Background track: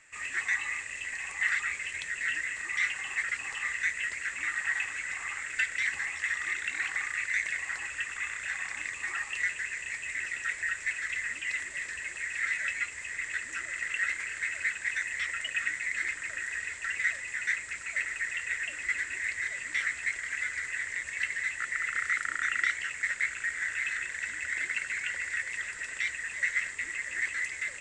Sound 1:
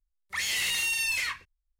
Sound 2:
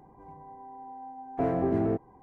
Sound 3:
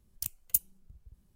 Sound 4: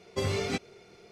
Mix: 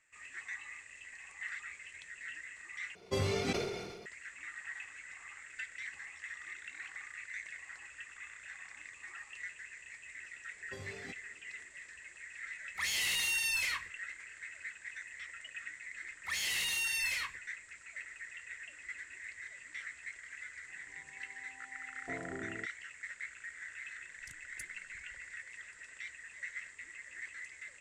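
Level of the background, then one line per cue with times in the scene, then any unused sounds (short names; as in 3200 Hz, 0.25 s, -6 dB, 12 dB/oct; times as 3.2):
background track -14 dB
2.95 replace with 4 -3.5 dB + sustainer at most 38 dB/s
10.55 add 4 -18 dB
12.45 add 1 -4.5 dB
15.94 add 1 -6 dB
20.69 add 2 -17 dB + ending faded out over 0.55 s
24.05 add 3 -12.5 dB + LPF 8800 Hz 24 dB/oct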